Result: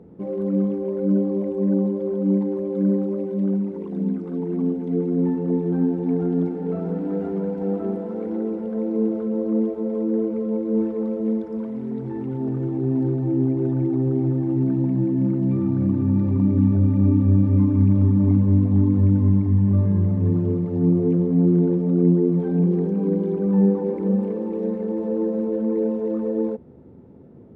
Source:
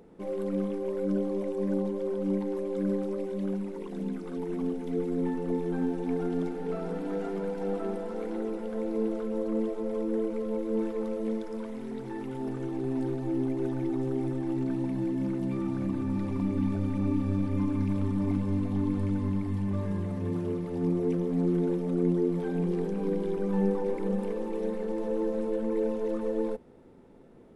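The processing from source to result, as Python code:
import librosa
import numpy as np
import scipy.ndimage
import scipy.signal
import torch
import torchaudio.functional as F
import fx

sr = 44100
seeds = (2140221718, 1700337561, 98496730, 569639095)

y = scipy.signal.sosfilt(scipy.signal.butter(4, 79.0, 'highpass', fs=sr, output='sos'), x)
y = fx.tilt_eq(y, sr, slope=-4.5)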